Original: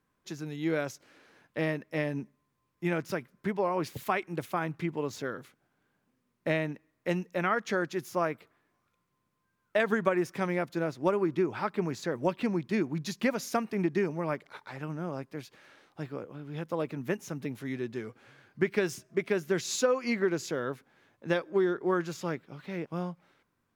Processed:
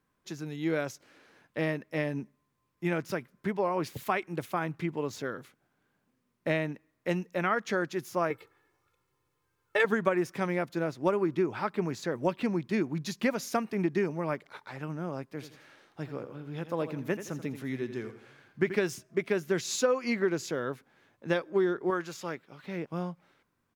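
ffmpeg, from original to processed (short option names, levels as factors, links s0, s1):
-filter_complex "[0:a]asettb=1/sr,asplit=3[s0][s1][s2];[s0]atrim=end=8.304[s3];[s1]atrim=start=8.3:end=9.85,asetpts=PTS-STARTPTS,afade=t=in:d=0.004:c=qsin,afade=t=out:st=1.546:d=0.004:c=qsin,aecho=1:1:2.3:0.95,atrim=end_sample=68355[s4];[s2]atrim=start=9.846[s5];[s3][s4]acrossfade=d=0.004:c1=hsin:c2=qsin[s6];[s6][s5]acrossfade=d=0.004:c1=qsin:c2=hsin,asplit=3[s7][s8][s9];[s7]afade=t=out:st=15.39:d=0.02[s10];[s8]aecho=1:1:84|168|252|336:0.266|0.104|0.0405|0.0158,afade=t=in:st=15.39:d=0.02,afade=t=out:st=18.76:d=0.02[s11];[s9]afade=t=in:st=18.76:d=0.02[s12];[s10][s11][s12]amix=inputs=3:normalize=0,asettb=1/sr,asplit=3[s13][s14][s15];[s13]atrim=end=21.904[s16];[s14]atrim=start=21.9:end=22.64,asetpts=PTS-STARTPTS,afade=t=in:d=0.004:c=qsin,afade=t=out:st=0.736:d=0.004:c=qsin,lowshelf=f=330:g=-9[s17];[s15]atrim=start=22.636[s18];[s16][s17]acrossfade=d=0.004:c1=hsin:c2=qsin[s19];[s19][s18]acrossfade=d=0.004:c1=qsin:c2=hsin"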